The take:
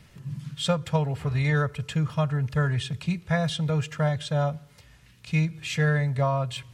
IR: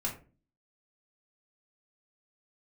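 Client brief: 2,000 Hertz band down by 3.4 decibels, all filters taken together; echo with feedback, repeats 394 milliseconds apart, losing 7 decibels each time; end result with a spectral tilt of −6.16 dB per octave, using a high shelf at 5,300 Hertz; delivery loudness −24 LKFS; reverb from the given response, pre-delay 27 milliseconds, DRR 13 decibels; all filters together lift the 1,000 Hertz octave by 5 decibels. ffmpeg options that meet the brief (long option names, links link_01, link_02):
-filter_complex "[0:a]equalizer=frequency=1000:width_type=o:gain=8.5,equalizer=frequency=2000:width_type=o:gain=-8.5,highshelf=frequency=5300:gain=6.5,aecho=1:1:394|788|1182|1576|1970:0.447|0.201|0.0905|0.0407|0.0183,asplit=2[link_01][link_02];[1:a]atrim=start_sample=2205,adelay=27[link_03];[link_02][link_03]afir=irnorm=-1:irlink=0,volume=-16.5dB[link_04];[link_01][link_04]amix=inputs=2:normalize=0,volume=1dB"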